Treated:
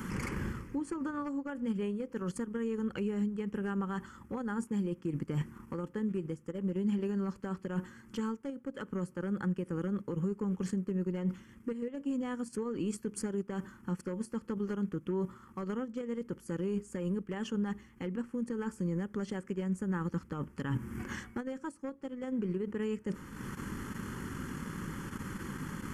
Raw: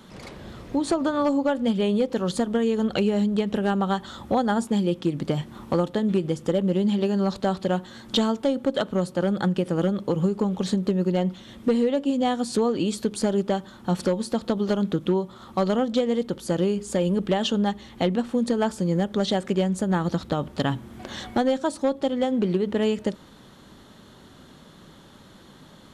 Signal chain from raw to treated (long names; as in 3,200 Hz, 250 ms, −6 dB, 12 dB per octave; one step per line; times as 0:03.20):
dynamic equaliser 510 Hz, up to +5 dB, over −33 dBFS, Q 1.3
in parallel at +2 dB: output level in coarse steps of 17 dB
on the sum: transient designer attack +3 dB, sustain −7 dB
reversed playback
downward compressor 6 to 1, threshold −31 dBFS, peak gain reduction 23.5 dB
reversed playback
brickwall limiter −28 dBFS, peak gain reduction 10 dB
phaser with its sweep stopped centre 1,600 Hz, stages 4
level +5 dB